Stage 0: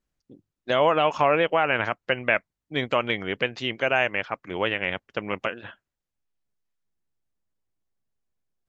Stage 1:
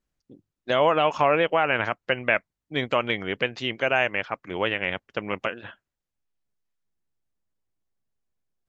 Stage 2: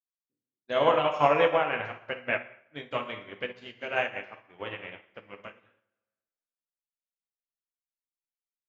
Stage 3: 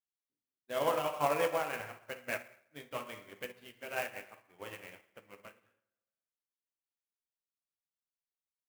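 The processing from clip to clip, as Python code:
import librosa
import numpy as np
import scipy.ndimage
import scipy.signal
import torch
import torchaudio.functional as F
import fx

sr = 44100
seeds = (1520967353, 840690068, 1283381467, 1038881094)

y1 = x
y2 = fx.rev_plate(y1, sr, seeds[0], rt60_s=1.5, hf_ratio=0.8, predelay_ms=0, drr_db=0.0)
y2 = fx.upward_expand(y2, sr, threshold_db=-41.0, expansion=2.5)
y2 = y2 * 10.0 ** (-2.0 / 20.0)
y3 = fx.clock_jitter(y2, sr, seeds[1], jitter_ms=0.025)
y3 = y3 * 10.0 ** (-8.5 / 20.0)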